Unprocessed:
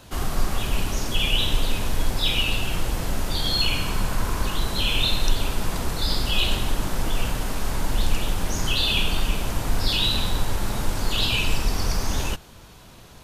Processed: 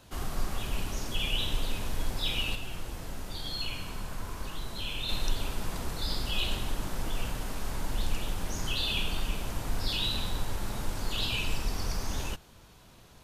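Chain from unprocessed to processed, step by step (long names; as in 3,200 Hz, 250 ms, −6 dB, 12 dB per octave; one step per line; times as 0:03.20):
0:02.55–0:05.09: flanger 1 Hz, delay 6 ms, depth 7.8 ms, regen +73%
level −8.5 dB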